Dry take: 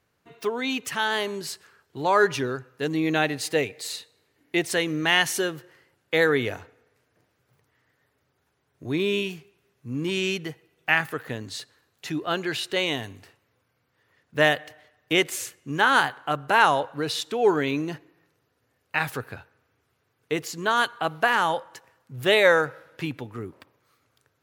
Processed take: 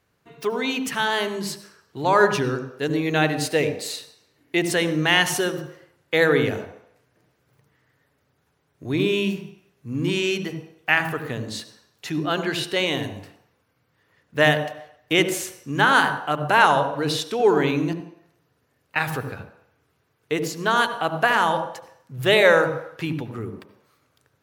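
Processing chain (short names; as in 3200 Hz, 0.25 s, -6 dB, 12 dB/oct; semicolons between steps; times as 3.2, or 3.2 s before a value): 17.93–18.96 compressor 3:1, threshold -53 dBFS, peak gain reduction 17 dB; on a send: reverb RT60 0.70 s, pre-delay 71 ms, DRR 9 dB; on the sum: gain +2 dB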